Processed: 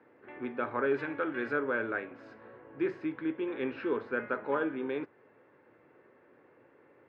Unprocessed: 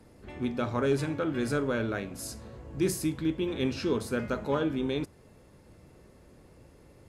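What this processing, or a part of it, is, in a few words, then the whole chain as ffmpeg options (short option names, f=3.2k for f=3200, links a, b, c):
bass cabinet: -filter_complex "[0:a]asettb=1/sr,asplit=3[a][b][c];[a]atrim=end=0.944[d];[b]atrim=start=0.94:end=1.53,asetpts=PTS-STARTPTS,afade=t=in:d=0.004:c=qsin,afade=t=out:st=0.586:d=0.004:c=qsin,aemphasis=mode=production:type=75fm[e];[c]atrim=start=1.526[f];[d][e]acrossfade=d=0.004:c1=hsin:c2=qsin[g];[g][f]acrossfade=d=0.004:c1=qsin:c2=hsin,highpass=330,highpass=82,equalizer=f=110:t=q:w=4:g=4,equalizer=f=190:t=q:w=4:g=-8,equalizer=f=660:t=q:w=4:g=-5,equalizer=f=1.6k:t=q:w=4:g=5,lowpass=f=2.3k:w=0.5412,lowpass=f=2.3k:w=1.3066"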